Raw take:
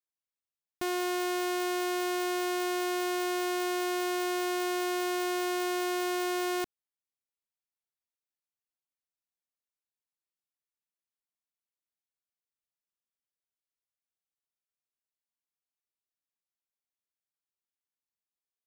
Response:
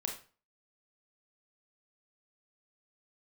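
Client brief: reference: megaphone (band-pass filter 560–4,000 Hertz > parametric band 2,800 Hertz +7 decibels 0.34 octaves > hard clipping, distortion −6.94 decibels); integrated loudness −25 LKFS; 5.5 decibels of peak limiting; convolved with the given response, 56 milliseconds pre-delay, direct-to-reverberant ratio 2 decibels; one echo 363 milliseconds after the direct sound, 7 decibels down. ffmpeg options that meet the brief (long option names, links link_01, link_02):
-filter_complex "[0:a]alimiter=level_in=7.5dB:limit=-24dB:level=0:latency=1,volume=-7.5dB,aecho=1:1:363:0.447,asplit=2[link_01][link_02];[1:a]atrim=start_sample=2205,adelay=56[link_03];[link_02][link_03]afir=irnorm=-1:irlink=0,volume=-3.5dB[link_04];[link_01][link_04]amix=inputs=2:normalize=0,highpass=560,lowpass=4000,equalizer=frequency=2800:width_type=o:width=0.34:gain=7,asoftclip=type=hard:threshold=-38.5dB,volume=17.5dB"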